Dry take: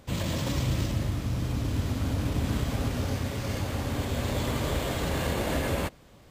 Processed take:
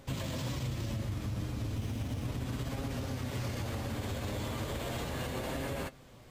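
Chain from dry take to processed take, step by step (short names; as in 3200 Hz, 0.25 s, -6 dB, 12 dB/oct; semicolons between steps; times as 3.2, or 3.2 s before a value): 1.76–2.25 minimum comb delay 0.33 ms; limiter -23 dBFS, peak gain reduction 7 dB; compressor, threshold -32 dBFS, peak gain reduction 5.5 dB; flange 0.35 Hz, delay 7.2 ms, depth 2.6 ms, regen +55%; gain +3.5 dB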